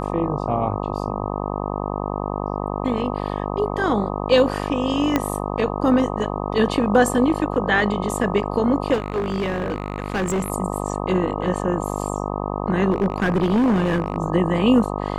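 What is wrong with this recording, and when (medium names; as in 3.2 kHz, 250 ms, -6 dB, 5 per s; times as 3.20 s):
buzz 50 Hz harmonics 25 -26 dBFS
5.16 s: pop -5 dBFS
8.93–10.50 s: clipped -18.5 dBFS
12.90–14.18 s: clipped -14.5 dBFS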